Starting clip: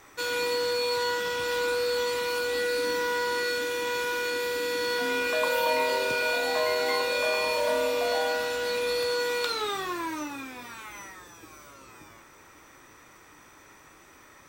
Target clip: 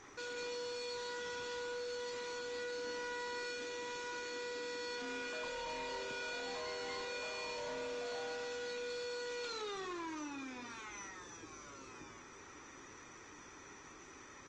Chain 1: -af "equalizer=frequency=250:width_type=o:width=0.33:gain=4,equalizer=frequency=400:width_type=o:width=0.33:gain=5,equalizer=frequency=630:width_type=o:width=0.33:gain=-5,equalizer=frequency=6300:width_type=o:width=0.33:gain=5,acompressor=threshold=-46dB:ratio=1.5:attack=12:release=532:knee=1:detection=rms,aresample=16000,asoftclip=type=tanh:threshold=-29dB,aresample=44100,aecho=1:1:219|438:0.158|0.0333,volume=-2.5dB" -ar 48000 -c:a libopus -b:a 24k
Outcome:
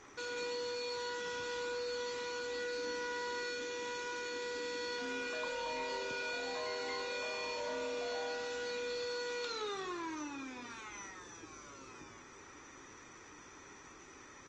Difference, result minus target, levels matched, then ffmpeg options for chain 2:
soft clipping: distortion −8 dB
-af "equalizer=frequency=250:width_type=o:width=0.33:gain=4,equalizer=frequency=400:width_type=o:width=0.33:gain=5,equalizer=frequency=630:width_type=o:width=0.33:gain=-5,equalizer=frequency=6300:width_type=o:width=0.33:gain=5,acompressor=threshold=-46dB:ratio=1.5:attack=12:release=532:knee=1:detection=rms,aresample=16000,asoftclip=type=tanh:threshold=-36dB,aresample=44100,aecho=1:1:219|438:0.158|0.0333,volume=-2.5dB" -ar 48000 -c:a libopus -b:a 24k

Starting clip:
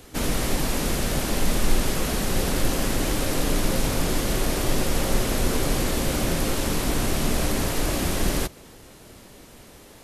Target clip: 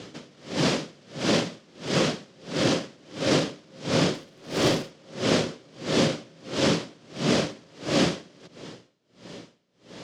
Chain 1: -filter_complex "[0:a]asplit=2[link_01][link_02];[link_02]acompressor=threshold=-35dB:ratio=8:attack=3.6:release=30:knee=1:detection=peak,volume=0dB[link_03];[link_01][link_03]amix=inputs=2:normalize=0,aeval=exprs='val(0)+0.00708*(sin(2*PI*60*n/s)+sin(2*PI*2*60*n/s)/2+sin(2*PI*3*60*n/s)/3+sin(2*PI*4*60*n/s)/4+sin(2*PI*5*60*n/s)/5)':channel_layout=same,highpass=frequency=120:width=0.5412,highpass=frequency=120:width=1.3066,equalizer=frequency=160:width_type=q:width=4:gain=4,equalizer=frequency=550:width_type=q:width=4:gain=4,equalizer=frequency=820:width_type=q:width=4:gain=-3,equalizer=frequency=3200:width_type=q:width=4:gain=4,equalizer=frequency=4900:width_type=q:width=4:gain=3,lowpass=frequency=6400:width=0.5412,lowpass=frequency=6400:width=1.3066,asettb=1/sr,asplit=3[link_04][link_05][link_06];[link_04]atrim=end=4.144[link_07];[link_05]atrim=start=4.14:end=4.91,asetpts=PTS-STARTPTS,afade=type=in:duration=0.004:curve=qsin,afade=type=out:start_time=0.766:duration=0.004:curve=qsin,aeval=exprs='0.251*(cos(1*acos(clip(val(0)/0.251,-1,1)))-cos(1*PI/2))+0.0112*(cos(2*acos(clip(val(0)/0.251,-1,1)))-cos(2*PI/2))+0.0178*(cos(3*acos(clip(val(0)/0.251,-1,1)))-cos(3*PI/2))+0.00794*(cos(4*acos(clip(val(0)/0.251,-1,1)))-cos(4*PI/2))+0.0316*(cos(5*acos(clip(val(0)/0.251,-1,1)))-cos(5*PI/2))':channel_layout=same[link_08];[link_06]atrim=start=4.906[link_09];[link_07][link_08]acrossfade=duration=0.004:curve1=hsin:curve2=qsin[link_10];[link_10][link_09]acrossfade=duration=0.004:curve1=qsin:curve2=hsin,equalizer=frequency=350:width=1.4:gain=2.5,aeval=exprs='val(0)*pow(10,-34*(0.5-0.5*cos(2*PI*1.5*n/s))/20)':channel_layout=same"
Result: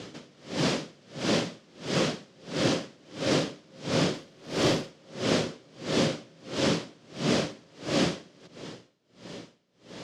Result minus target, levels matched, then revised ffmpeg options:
downward compressor: peak gain reduction +10 dB
-filter_complex "[0:a]asplit=2[link_01][link_02];[link_02]acompressor=threshold=-23.5dB:ratio=8:attack=3.6:release=30:knee=1:detection=peak,volume=0dB[link_03];[link_01][link_03]amix=inputs=2:normalize=0,aeval=exprs='val(0)+0.00708*(sin(2*PI*60*n/s)+sin(2*PI*2*60*n/s)/2+sin(2*PI*3*60*n/s)/3+sin(2*PI*4*60*n/s)/4+sin(2*PI*5*60*n/s)/5)':channel_layout=same,highpass=frequency=120:width=0.5412,highpass=frequency=120:width=1.3066,equalizer=frequency=160:width_type=q:width=4:gain=4,equalizer=frequency=550:width_type=q:width=4:gain=4,equalizer=frequency=820:width_type=q:width=4:gain=-3,equalizer=frequency=3200:width_type=q:width=4:gain=4,equalizer=frequency=4900:width_type=q:width=4:gain=3,lowpass=frequency=6400:width=0.5412,lowpass=frequency=6400:width=1.3066,asettb=1/sr,asplit=3[link_04][link_05][link_06];[link_04]atrim=end=4.144[link_07];[link_05]atrim=start=4.14:end=4.91,asetpts=PTS-STARTPTS,afade=type=in:duration=0.004:curve=qsin,afade=type=out:start_time=0.766:duration=0.004:curve=qsin,aeval=exprs='0.251*(cos(1*acos(clip(val(0)/0.251,-1,1)))-cos(1*PI/2))+0.0112*(cos(2*acos(clip(val(0)/0.251,-1,1)))-cos(2*PI/2))+0.0178*(cos(3*acos(clip(val(0)/0.251,-1,1)))-cos(3*PI/2))+0.00794*(cos(4*acos(clip(val(0)/0.251,-1,1)))-cos(4*PI/2))+0.0316*(cos(5*acos(clip(val(0)/0.251,-1,1)))-cos(5*PI/2))':channel_layout=same[link_08];[link_06]atrim=start=4.906[link_09];[link_07][link_08]acrossfade=duration=0.004:curve1=hsin:curve2=qsin[link_10];[link_10][link_09]acrossfade=duration=0.004:curve1=qsin:curve2=hsin,equalizer=frequency=350:width=1.4:gain=2.5,aeval=exprs='val(0)*pow(10,-34*(0.5-0.5*cos(2*PI*1.5*n/s))/20)':channel_layout=same"

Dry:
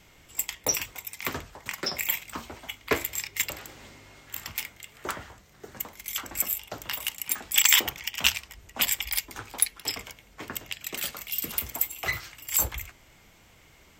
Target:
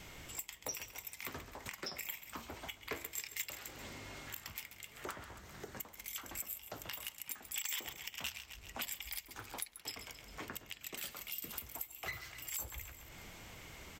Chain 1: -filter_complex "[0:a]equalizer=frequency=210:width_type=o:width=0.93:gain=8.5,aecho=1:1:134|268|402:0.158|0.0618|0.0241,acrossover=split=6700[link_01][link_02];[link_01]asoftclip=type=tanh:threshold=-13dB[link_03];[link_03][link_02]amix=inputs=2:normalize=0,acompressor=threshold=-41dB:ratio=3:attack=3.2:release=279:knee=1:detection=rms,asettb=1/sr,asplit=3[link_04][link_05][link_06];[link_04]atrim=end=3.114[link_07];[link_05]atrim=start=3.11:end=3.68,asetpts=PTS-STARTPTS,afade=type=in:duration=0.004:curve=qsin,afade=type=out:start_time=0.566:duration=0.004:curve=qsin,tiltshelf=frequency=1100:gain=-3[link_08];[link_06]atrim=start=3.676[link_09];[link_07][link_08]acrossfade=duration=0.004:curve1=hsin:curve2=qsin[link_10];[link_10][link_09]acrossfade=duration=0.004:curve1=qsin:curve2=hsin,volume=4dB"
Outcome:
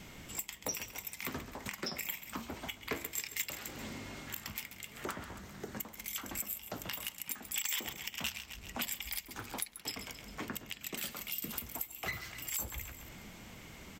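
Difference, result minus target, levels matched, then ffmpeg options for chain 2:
250 Hz band +4.5 dB; downward compressor: peak gain reduction −4 dB
-filter_complex "[0:a]aecho=1:1:134|268|402:0.158|0.0618|0.0241,acrossover=split=6700[link_01][link_02];[link_01]asoftclip=type=tanh:threshold=-13dB[link_03];[link_03][link_02]amix=inputs=2:normalize=0,acompressor=threshold=-47dB:ratio=3:attack=3.2:release=279:knee=1:detection=rms,asettb=1/sr,asplit=3[link_04][link_05][link_06];[link_04]atrim=end=3.114[link_07];[link_05]atrim=start=3.11:end=3.68,asetpts=PTS-STARTPTS,afade=type=in:duration=0.004:curve=qsin,afade=type=out:start_time=0.566:duration=0.004:curve=qsin,tiltshelf=frequency=1100:gain=-3[link_08];[link_06]atrim=start=3.676[link_09];[link_07][link_08]acrossfade=duration=0.004:curve1=hsin:curve2=qsin[link_10];[link_10][link_09]acrossfade=duration=0.004:curve1=qsin:curve2=hsin,volume=4dB"

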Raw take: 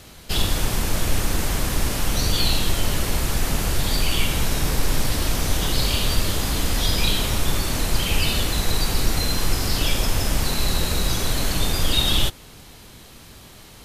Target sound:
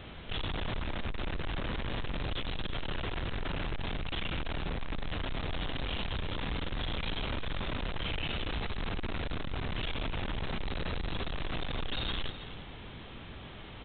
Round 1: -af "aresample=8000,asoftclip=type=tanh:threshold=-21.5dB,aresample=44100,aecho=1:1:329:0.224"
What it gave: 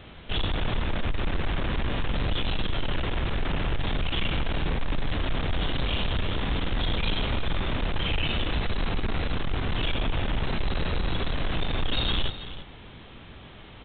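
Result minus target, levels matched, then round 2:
soft clipping: distortion −5 dB
-af "aresample=8000,asoftclip=type=tanh:threshold=-32.5dB,aresample=44100,aecho=1:1:329:0.224"

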